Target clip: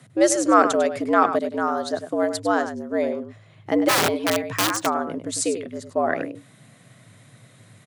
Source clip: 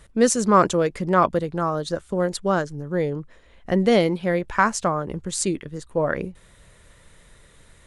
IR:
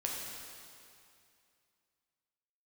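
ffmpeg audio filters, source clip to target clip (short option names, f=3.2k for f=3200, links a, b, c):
-filter_complex "[0:a]asplit=2[a][b];[b]adelay=99.13,volume=-10dB,highshelf=f=4k:g=-2.23[c];[a][c]amix=inputs=2:normalize=0,asplit=3[d][e][f];[d]afade=t=out:st=3.88:d=0.02[g];[e]aeval=exprs='(mod(5.01*val(0)+1,2)-1)/5.01':c=same,afade=t=in:st=3.88:d=0.02,afade=t=out:st=4.85:d=0.02[h];[f]afade=t=in:st=4.85:d=0.02[i];[g][h][i]amix=inputs=3:normalize=0,afreqshift=98"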